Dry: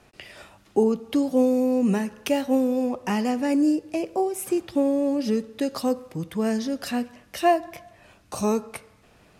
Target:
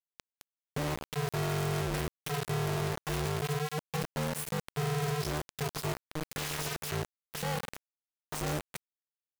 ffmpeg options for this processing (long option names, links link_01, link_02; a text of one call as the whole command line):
ffmpeg -i in.wav -filter_complex "[0:a]highpass=frequency=89:poles=1,asettb=1/sr,asplit=3[link_01][link_02][link_03];[link_01]atrim=end=6.274[link_04];[link_02]atrim=start=6.27:end=6.9,asetpts=PTS-STARTPTS,afade=type=in:duration=0.004:curve=qsin,afade=type=out:start_time=0.626:duration=0.004:curve=qsin,aeval=exprs='(mod(26.6*val(0)+1,2)-1)/26.6':channel_layout=same[link_05];[link_03]atrim=start=6.896[link_06];[link_04][link_05]acrossfade=duration=0.004:curve1=hsin:curve2=qsin[link_07];[link_07][link_06]acrossfade=duration=0.004:curve1=qsin:curve2=hsin,aeval=exprs='(tanh(56.2*val(0)+0.35)-tanh(0.35))/56.2':channel_layout=same,aeval=exprs='val(0)*sin(2*PI*150*n/s)':channel_layout=same,acrusher=bits=5:mix=0:aa=0.000001,volume=4dB" out.wav